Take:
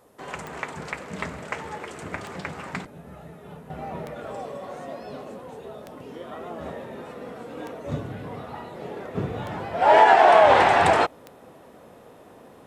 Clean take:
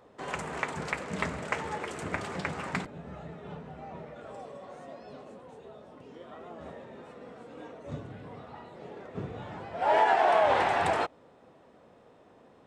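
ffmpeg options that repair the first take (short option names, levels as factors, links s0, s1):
-af "adeclick=t=4,agate=range=0.0891:threshold=0.01,asetnsamples=n=441:p=0,asendcmd='3.7 volume volume -9dB',volume=1"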